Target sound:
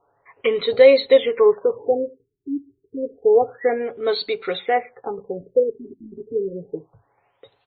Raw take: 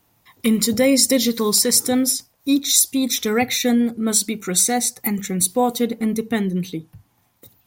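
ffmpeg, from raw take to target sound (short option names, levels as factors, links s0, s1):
-af "lowshelf=f=330:t=q:w=3:g=-11,aecho=1:1:7.2:0.42,afftfilt=real='re*lt(b*sr/1024,380*pow(4600/380,0.5+0.5*sin(2*PI*0.29*pts/sr)))':imag='im*lt(b*sr/1024,380*pow(4600/380,0.5+0.5*sin(2*PI*0.29*pts/sr)))':win_size=1024:overlap=0.75,volume=1.12"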